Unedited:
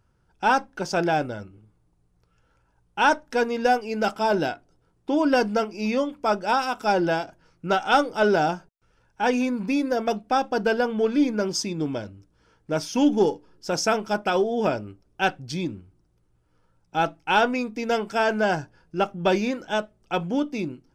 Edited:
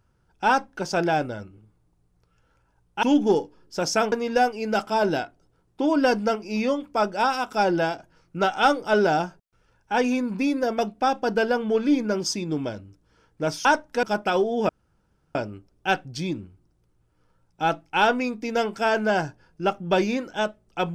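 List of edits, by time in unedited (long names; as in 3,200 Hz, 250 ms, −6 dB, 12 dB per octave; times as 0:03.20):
0:03.03–0:03.41: swap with 0:12.94–0:14.03
0:14.69: splice in room tone 0.66 s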